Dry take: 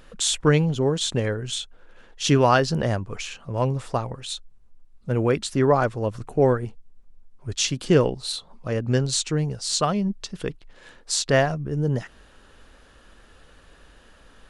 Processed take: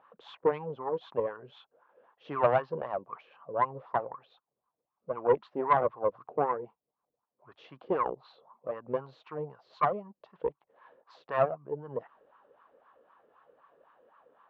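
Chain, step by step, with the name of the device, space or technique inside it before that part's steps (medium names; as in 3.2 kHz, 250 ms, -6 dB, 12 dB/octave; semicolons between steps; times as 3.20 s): wah-wah guitar rig (wah-wah 3.9 Hz 470–1100 Hz, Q 5.2; valve stage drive 21 dB, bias 0.7; cabinet simulation 85–3600 Hz, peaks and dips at 96 Hz -7 dB, 140 Hz +5 dB, 1.1 kHz +5 dB); trim +6 dB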